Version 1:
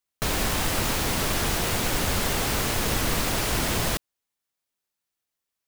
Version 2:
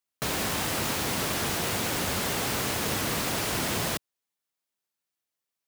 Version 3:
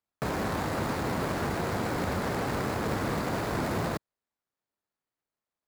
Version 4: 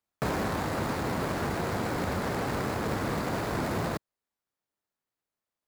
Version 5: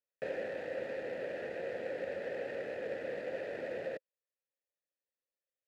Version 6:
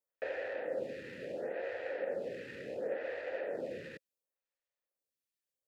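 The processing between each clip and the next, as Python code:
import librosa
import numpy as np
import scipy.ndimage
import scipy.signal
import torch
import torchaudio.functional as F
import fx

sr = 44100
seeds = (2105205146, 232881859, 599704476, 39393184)

y1 = scipy.signal.sosfilt(scipy.signal.butter(2, 100.0, 'highpass', fs=sr, output='sos'), x)
y1 = F.gain(torch.from_numpy(y1), -2.5).numpy()
y2 = scipy.ndimage.median_filter(y1, 15, mode='constant')
y2 = F.gain(torch.from_numpy(y2), 2.0).numpy()
y3 = fx.rider(y2, sr, range_db=10, speed_s=0.5)
y4 = fx.vowel_filter(y3, sr, vowel='e')
y4 = F.gain(torch.from_numpy(y4), 2.5).numpy()
y5 = fx.stagger_phaser(y4, sr, hz=0.71)
y5 = F.gain(torch.from_numpy(y5), 3.0).numpy()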